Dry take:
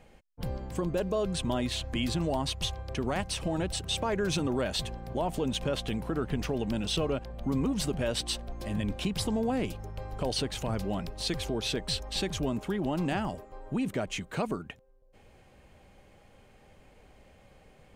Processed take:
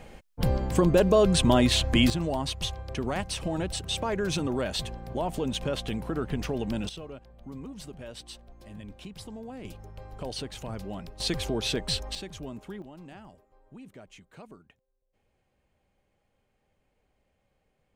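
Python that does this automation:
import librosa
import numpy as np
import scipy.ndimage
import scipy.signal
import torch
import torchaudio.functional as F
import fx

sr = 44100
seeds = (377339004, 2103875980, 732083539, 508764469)

y = fx.gain(x, sr, db=fx.steps((0.0, 9.5), (2.1, 0.5), (6.89, -12.0), (9.65, -5.0), (11.2, 2.5), (12.15, -8.5), (12.82, -16.5)))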